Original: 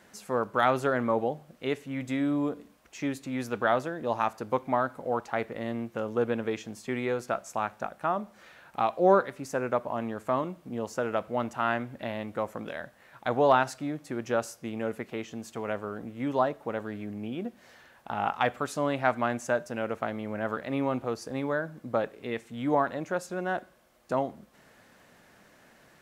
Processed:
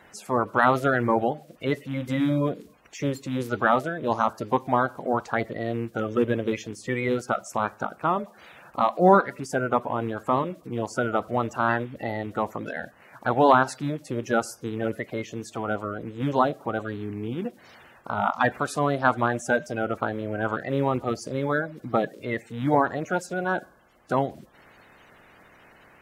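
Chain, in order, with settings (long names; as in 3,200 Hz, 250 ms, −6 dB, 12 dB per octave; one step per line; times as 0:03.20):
spectral magnitudes quantised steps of 30 dB
level +5 dB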